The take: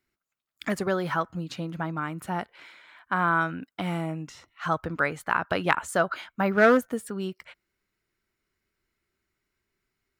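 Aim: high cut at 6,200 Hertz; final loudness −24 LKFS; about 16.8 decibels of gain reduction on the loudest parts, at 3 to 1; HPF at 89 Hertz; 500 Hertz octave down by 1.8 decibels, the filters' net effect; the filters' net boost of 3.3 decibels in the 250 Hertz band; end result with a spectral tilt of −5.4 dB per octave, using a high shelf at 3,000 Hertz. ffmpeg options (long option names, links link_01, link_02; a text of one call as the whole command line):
ffmpeg -i in.wav -af "highpass=89,lowpass=6200,equalizer=frequency=250:width_type=o:gain=5.5,equalizer=frequency=500:width_type=o:gain=-3.5,highshelf=frequency=3000:gain=-6,acompressor=threshold=-38dB:ratio=3,volume=15.5dB" out.wav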